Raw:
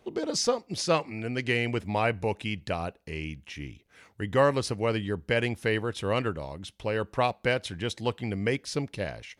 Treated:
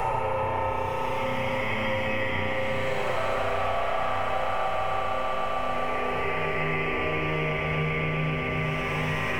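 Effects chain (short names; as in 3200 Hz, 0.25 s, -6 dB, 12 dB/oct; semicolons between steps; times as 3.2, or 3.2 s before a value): minimum comb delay 7.8 ms; graphic EQ 125/250/500/1000/2000/4000/8000 Hz -3/-12/+6/+9/+4/-11/-5 dB; compressor, threshold -32 dBFS, peak gain reduction 18 dB; buzz 50 Hz, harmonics 5, -53 dBFS -2 dB/oct; Paulstretch 7.3×, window 0.25 s, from 2.25; on a send: swelling echo 0.13 s, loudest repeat 8, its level -15 dB; on the sum: spring tank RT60 3.8 s, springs 32 ms, chirp 40 ms, DRR -3.5 dB; three-band squash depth 100%; gain +3.5 dB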